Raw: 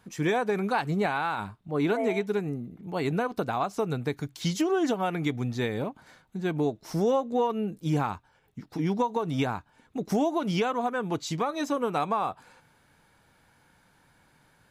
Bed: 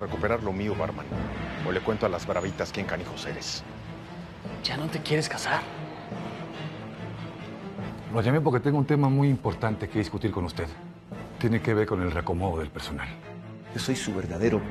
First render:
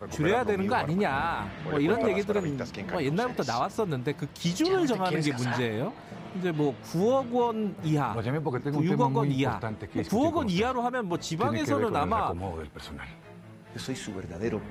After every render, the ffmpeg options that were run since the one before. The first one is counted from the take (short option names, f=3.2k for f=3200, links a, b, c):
-filter_complex "[1:a]volume=-6.5dB[a];[0:a][a]amix=inputs=2:normalize=0"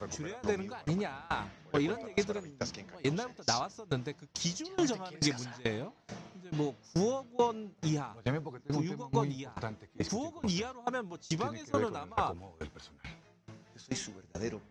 -af "lowpass=f=5.9k:t=q:w=4.6,aeval=exprs='val(0)*pow(10,-26*if(lt(mod(2.3*n/s,1),2*abs(2.3)/1000),1-mod(2.3*n/s,1)/(2*abs(2.3)/1000),(mod(2.3*n/s,1)-2*abs(2.3)/1000)/(1-2*abs(2.3)/1000))/20)':c=same"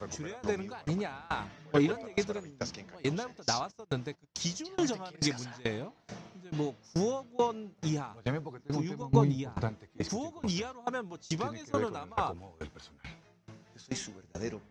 -filter_complex "[0:a]asettb=1/sr,asplit=3[a][b][c];[a]atrim=end=1.494[d];[b]atrim=start=1.49:end=1.92,asetpts=PTS-STARTPTS,afade=t=in:d=0.004:c=qsin,afade=t=out:st=0.426:d=0.004:c=qsin,aecho=1:1:6.9:0.85,atrim=end_sample=18963[e];[c]atrim=start=1.916[f];[d][e]acrossfade=d=0.004:c1=hsin:c2=qsin[g];[g][f]acrossfade=d=0.004:c1=qsin:c2=hsin,asplit=3[h][i][j];[h]afade=t=out:st=3.7:d=0.02[k];[i]agate=range=-15dB:threshold=-48dB:ratio=16:release=100:detection=peak,afade=t=in:st=3.7:d=0.02,afade=t=out:st=5.17:d=0.02[l];[j]afade=t=in:st=5.17:d=0.02[m];[k][l][m]amix=inputs=3:normalize=0,asettb=1/sr,asplit=3[n][o][p];[n]atrim=end=9.014[q];[o]atrim=start=9.01:end=9.69,asetpts=PTS-STARTPTS,afade=t=in:d=0.004:c=qsin,afade=t=out:st=0.676:d=0.004:c=qsin,lowshelf=f=480:g=9[r];[p]atrim=start=9.686[s];[q][r]acrossfade=d=0.004:c1=hsin:c2=qsin[t];[t][s]acrossfade=d=0.004:c1=qsin:c2=hsin"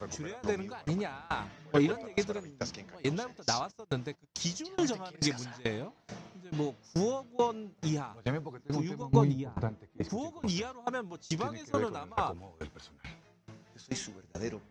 -filter_complex "[0:a]asettb=1/sr,asplit=3[a][b][c];[a]atrim=end=9.334[d];[b]atrim=start=9.33:end=10.18,asetpts=PTS-STARTPTS,afade=t=in:d=0.004:c=qsin,afade=t=out:st=0.846:d=0.004:c=qsin,highshelf=f=2k:g=-10.5[e];[c]atrim=start=10.176[f];[d][e]acrossfade=d=0.004:c1=hsin:c2=qsin[g];[g][f]acrossfade=d=0.004:c1=qsin:c2=hsin"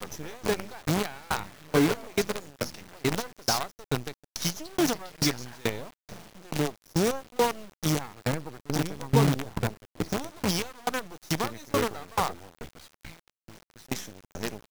-filter_complex "[0:a]asplit=2[a][b];[b]asoftclip=type=hard:threshold=-24dB,volume=-3.5dB[c];[a][c]amix=inputs=2:normalize=0,acrusher=bits=5:dc=4:mix=0:aa=0.000001"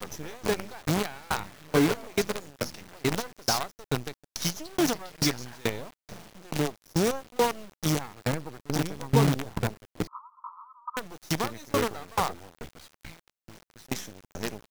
-filter_complex "[0:a]asettb=1/sr,asplit=3[a][b][c];[a]atrim=end=10.074[d];[b]atrim=start=10.07:end=10.97,asetpts=PTS-STARTPTS,afade=t=in:d=0.004:c=qsin,afade=t=out:st=0.896:d=0.004:c=qsin,asuperpass=centerf=1100:order=12:qfactor=2.8[e];[c]atrim=start=10.966[f];[d][e]acrossfade=d=0.004:c1=hsin:c2=qsin[g];[g][f]acrossfade=d=0.004:c1=qsin:c2=hsin"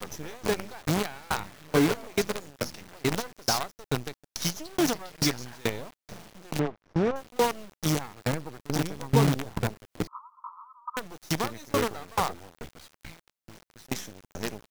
-filter_complex "[0:a]asettb=1/sr,asplit=3[a][b][c];[a]atrim=end=6.594[d];[b]atrim=start=6.59:end=7.16,asetpts=PTS-STARTPTS,afade=t=in:d=0.004:c=qsin,afade=t=out:st=0.566:d=0.004:c=qsin,lowpass=2k[e];[c]atrim=start=7.156[f];[d][e]acrossfade=d=0.004:c1=hsin:c2=qsin[g];[g][f]acrossfade=d=0.004:c1=qsin:c2=hsin,asettb=1/sr,asplit=3[h][i][j];[h]atrim=end=8.664[k];[i]atrim=start=8.66:end=10.08,asetpts=PTS-STARTPTS,afade=t=in:d=0.004:c=qsin,afade=t=out:st=1.416:d=0.004:c=qsin,acompressor=mode=upward:threshold=-42dB:ratio=2.5:attack=3.2:release=140:knee=2.83:detection=peak[l];[j]atrim=start=10.076[m];[k][l]acrossfade=d=0.004:c1=hsin:c2=qsin[n];[n][m]acrossfade=d=0.004:c1=qsin:c2=hsin"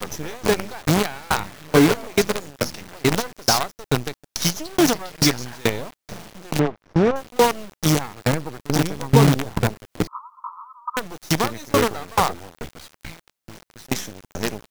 -af "volume=8dB,alimiter=limit=-2dB:level=0:latency=1"